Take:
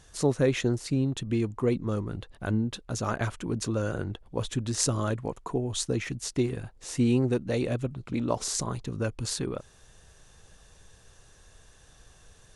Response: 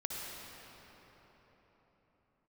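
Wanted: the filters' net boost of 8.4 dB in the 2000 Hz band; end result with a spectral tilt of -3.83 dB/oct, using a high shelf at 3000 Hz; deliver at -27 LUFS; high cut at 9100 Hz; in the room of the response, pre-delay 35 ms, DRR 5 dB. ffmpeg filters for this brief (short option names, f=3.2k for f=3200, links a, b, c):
-filter_complex "[0:a]lowpass=9.1k,equalizer=f=2k:t=o:g=7.5,highshelf=f=3k:g=9,asplit=2[a][b];[1:a]atrim=start_sample=2205,adelay=35[c];[b][c]afir=irnorm=-1:irlink=0,volume=-7dB[d];[a][d]amix=inputs=2:normalize=0,volume=-1dB"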